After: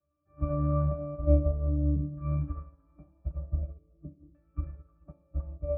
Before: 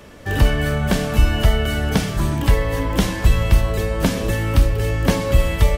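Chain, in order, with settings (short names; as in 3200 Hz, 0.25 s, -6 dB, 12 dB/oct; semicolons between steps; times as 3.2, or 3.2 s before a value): LFO low-pass saw down 0.46 Hz 290–1700 Hz; transient shaper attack 0 dB, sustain +7 dB; octave resonator D, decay 0.37 s; delay with a stepping band-pass 0.32 s, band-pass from 1300 Hz, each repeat 1.4 oct, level -0.5 dB; upward expander 2.5:1, over -35 dBFS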